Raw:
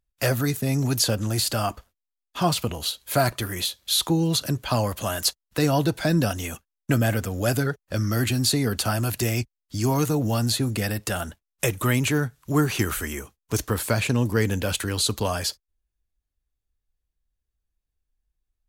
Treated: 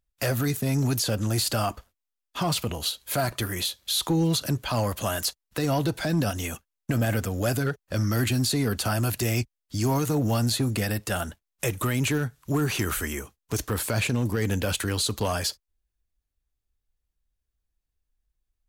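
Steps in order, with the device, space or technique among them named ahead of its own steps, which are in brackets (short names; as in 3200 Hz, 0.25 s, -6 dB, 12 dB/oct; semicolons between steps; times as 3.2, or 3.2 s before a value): limiter into clipper (limiter -15.5 dBFS, peak gain reduction 6.5 dB; hard clip -18 dBFS, distortion -25 dB)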